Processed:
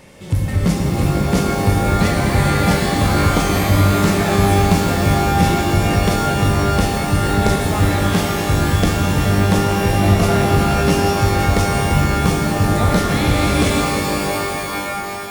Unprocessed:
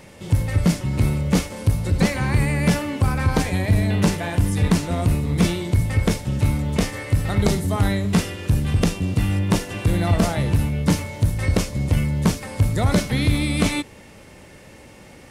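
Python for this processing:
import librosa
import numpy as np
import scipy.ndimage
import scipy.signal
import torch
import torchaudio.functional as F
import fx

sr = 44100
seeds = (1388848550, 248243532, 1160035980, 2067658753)

y = fx.rev_shimmer(x, sr, seeds[0], rt60_s=3.7, semitones=12, shimmer_db=-2, drr_db=0.5)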